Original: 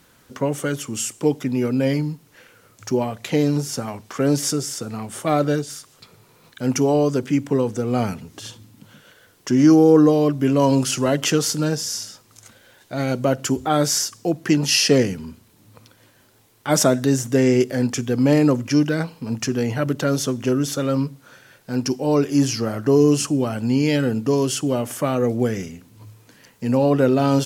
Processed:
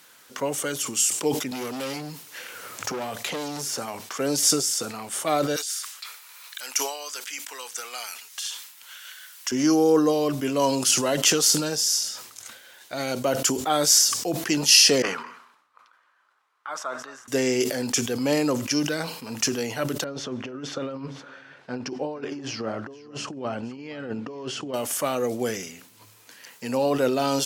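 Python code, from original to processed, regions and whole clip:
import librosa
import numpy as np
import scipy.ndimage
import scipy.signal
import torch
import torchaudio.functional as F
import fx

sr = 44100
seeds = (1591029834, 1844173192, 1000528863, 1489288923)

y = fx.chain(x, sr, fx.clip_hard(threshold_db=-22.5),
    fx.band_squash(depth_pct=70), at=(1.51, 3.78))
y = fx.chain(y, sr, fx.highpass(hz=1400.0, slope=12),
    fx.high_shelf(hz=8100.0, db=4.0),
    fx.band_squash(depth_pct=40), at=(5.56, 9.52))
y = fx.chain(y, sr, fx.bandpass_q(hz=1200.0, q=4.0),
    fx.echo_single(ms=217, db=-18.5), at=(15.02, 17.28))
y = fx.chain(y, sr, fx.over_compress(threshold_db=-23.0, ratio=-0.5),
    fx.spacing_loss(db_at_10k=33),
    fx.echo_single(ms=465, db=-23.0), at=(20.04, 24.74))
y = fx.highpass(y, sr, hz=1300.0, slope=6)
y = fx.dynamic_eq(y, sr, hz=1700.0, q=0.87, threshold_db=-44.0, ratio=4.0, max_db=-6)
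y = fx.sustainer(y, sr, db_per_s=73.0)
y = F.gain(torch.from_numpy(y), 5.0).numpy()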